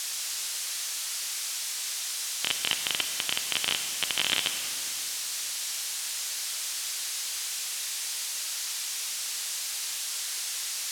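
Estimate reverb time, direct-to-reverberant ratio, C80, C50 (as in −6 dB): 2.8 s, 7.0 dB, 8.5 dB, 8.0 dB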